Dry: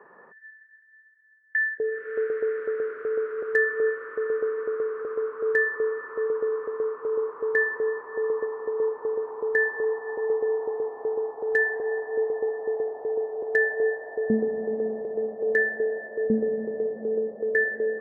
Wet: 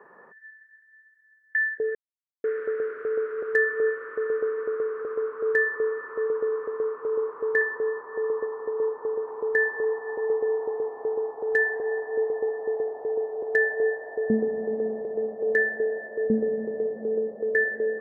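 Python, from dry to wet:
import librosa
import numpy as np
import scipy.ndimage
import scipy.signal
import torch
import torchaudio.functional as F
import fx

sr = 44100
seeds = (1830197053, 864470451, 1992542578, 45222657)

y = fx.cheby1_lowpass(x, sr, hz=1600.0, order=2, at=(7.61, 9.28))
y = fx.edit(y, sr, fx.silence(start_s=1.95, length_s=0.49), tone=tone)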